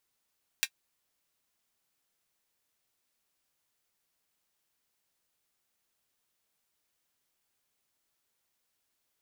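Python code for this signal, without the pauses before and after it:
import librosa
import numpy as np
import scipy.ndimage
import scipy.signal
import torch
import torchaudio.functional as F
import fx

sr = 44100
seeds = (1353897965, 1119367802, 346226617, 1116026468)

y = fx.drum_hat(sr, length_s=0.24, from_hz=2100.0, decay_s=0.07)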